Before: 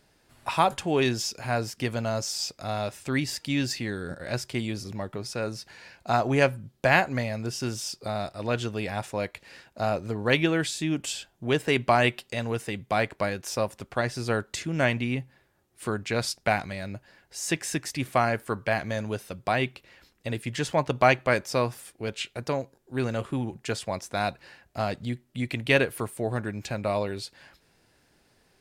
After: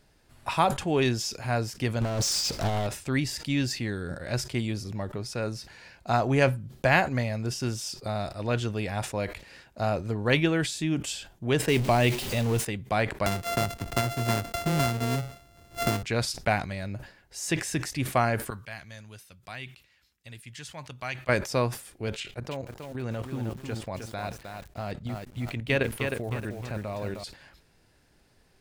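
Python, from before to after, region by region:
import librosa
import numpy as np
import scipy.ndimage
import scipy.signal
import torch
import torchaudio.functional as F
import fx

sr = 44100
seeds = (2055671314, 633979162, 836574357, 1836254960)

y = fx.chain(x, sr, fx.over_compress(threshold_db=-32.0, ratio=-0.5),
    fx.power_curve(exponent=0.5),
    fx.doppler_dist(depth_ms=0.76), at=(2.01, 2.87))
y = fx.chain(y, sr, fx.zero_step(step_db=-27.5),
    fx.dynamic_eq(hz=1400.0, q=1.1, threshold_db=-36.0, ratio=4.0, max_db=-7), at=(11.68, 12.65))
y = fx.chain(y, sr, fx.sample_sort(block=64),
    fx.band_squash(depth_pct=100), at=(13.26, 16.03))
y = fx.chain(y, sr, fx.highpass(hz=53.0, slope=12),
    fx.tone_stack(knobs='5-5-5'), at=(18.5, 21.29))
y = fx.chain(y, sr, fx.level_steps(step_db=11),
    fx.high_shelf(hz=5200.0, db=-4.5),
    fx.echo_crushed(ms=311, feedback_pct=35, bits=8, wet_db=-5.0), at=(22.2, 27.24))
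y = fx.low_shelf(y, sr, hz=94.0, db=10.0)
y = fx.sustainer(y, sr, db_per_s=130.0)
y = F.gain(torch.from_numpy(y), -1.5).numpy()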